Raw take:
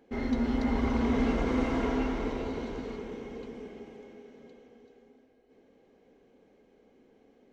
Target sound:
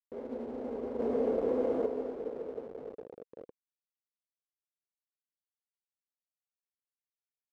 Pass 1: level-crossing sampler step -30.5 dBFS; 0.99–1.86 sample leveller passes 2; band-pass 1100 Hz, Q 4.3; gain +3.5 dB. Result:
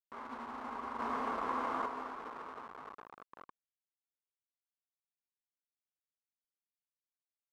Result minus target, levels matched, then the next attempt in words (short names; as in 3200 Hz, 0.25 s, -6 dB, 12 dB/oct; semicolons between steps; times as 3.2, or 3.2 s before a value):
1000 Hz band +15.0 dB
level-crossing sampler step -30.5 dBFS; 0.99–1.86 sample leveller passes 2; band-pass 490 Hz, Q 4.3; gain +3.5 dB